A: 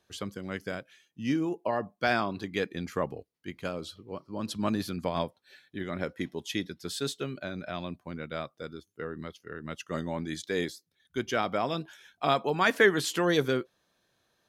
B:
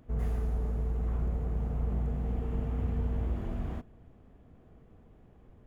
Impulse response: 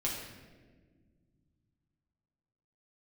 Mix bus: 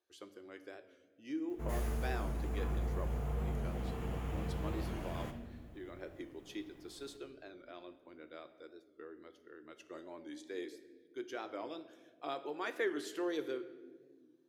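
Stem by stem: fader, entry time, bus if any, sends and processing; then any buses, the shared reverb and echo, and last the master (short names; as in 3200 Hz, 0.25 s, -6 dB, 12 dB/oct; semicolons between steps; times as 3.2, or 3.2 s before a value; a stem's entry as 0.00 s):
-18.5 dB, 0.00 s, send -10 dB, resonant low shelf 240 Hz -10 dB, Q 3
-3.5 dB, 1.50 s, send -4 dB, tilt +3 dB/oct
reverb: on, RT60 1.6 s, pre-delay 6 ms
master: record warp 45 rpm, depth 100 cents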